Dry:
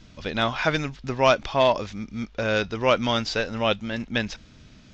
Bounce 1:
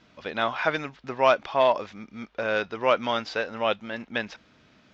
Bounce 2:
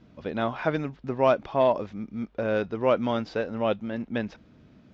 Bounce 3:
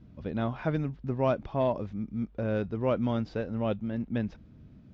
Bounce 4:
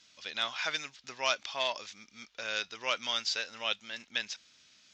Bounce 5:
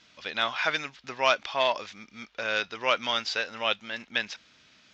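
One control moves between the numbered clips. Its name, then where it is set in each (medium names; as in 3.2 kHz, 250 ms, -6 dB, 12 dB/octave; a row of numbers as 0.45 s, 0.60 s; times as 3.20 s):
band-pass filter, frequency: 1 kHz, 360 Hz, 140 Hz, 7.6 kHz, 2.7 kHz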